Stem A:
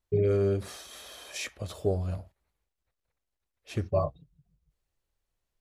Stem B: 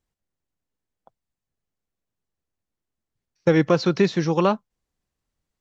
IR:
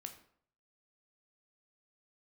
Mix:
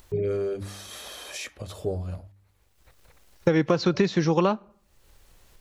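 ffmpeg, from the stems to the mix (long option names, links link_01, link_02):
-filter_complex "[0:a]bandreject=frequency=670:width=21,bandreject=frequency=99.13:width_type=h:width=4,bandreject=frequency=198.26:width_type=h:width=4,bandreject=frequency=297.39:width_type=h:width=4,acompressor=mode=upward:threshold=-31dB:ratio=2.5,volume=-1dB[link_01];[1:a]volume=1.5dB,asplit=3[link_02][link_03][link_04];[link_03]volume=-16dB[link_05];[link_04]apad=whole_len=247100[link_06];[link_01][link_06]sidechaincompress=threshold=-34dB:ratio=8:attack=16:release=416[link_07];[2:a]atrim=start_sample=2205[link_08];[link_05][link_08]afir=irnorm=-1:irlink=0[link_09];[link_07][link_02][link_09]amix=inputs=3:normalize=0,acompressor=threshold=-17dB:ratio=6"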